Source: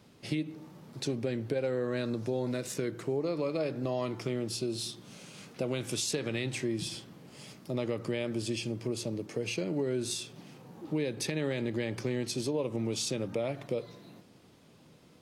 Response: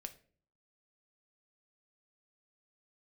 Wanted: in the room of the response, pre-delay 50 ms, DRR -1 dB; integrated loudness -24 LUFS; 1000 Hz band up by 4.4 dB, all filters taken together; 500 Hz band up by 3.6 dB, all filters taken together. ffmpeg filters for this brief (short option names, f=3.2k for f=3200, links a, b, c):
-filter_complex "[0:a]equalizer=f=500:t=o:g=3.5,equalizer=f=1k:t=o:g=4.5,asplit=2[a][b];[1:a]atrim=start_sample=2205,adelay=50[c];[b][c]afir=irnorm=-1:irlink=0,volume=5.5dB[d];[a][d]amix=inputs=2:normalize=0,volume=4dB"